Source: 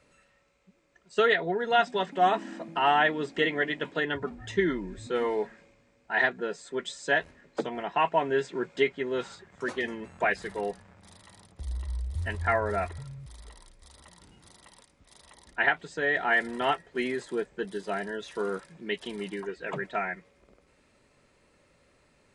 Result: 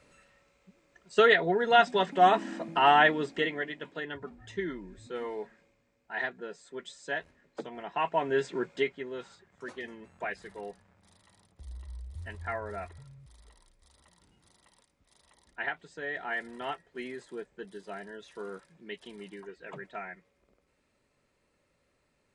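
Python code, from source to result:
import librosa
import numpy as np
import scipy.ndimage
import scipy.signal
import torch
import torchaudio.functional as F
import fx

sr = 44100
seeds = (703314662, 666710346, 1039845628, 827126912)

y = fx.gain(x, sr, db=fx.line((3.08, 2.0), (3.75, -8.5), (7.68, -8.5), (8.51, 0.5), (9.19, -9.5)))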